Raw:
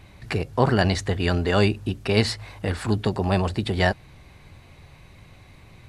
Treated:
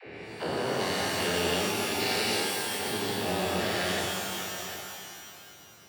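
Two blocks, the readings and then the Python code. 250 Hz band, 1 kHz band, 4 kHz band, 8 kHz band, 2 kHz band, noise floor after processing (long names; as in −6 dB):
−9.0 dB, −3.0 dB, +1.0 dB, +7.0 dB, −2.0 dB, −51 dBFS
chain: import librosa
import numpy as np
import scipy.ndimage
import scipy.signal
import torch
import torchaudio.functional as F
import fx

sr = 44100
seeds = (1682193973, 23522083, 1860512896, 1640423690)

p1 = fx.spec_steps(x, sr, hold_ms=400)
p2 = fx.weighting(p1, sr, curve='A')
p3 = fx.env_lowpass(p2, sr, base_hz=880.0, full_db=-28.5)
p4 = fx.peak_eq(p3, sr, hz=1100.0, db=-10.0, octaves=1.2)
p5 = fx.hum_notches(p4, sr, base_hz=50, count=7)
p6 = fx.rider(p5, sr, range_db=3, speed_s=0.5)
p7 = p5 + (p6 * 10.0 ** (-1.5 / 20.0))
p8 = fx.dispersion(p7, sr, late='lows', ms=67.0, hz=350.0)
p9 = p8 + fx.echo_single(p8, sr, ms=749, db=-12.0, dry=0)
p10 = fx.rev_shimmer(p9, sr, seeds[0], rt60_s=2.2, semitones=12, shimmer_db=-2, drr_db=1.5)
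y = p10 * 10.0 ** (-3.5 / 20.0)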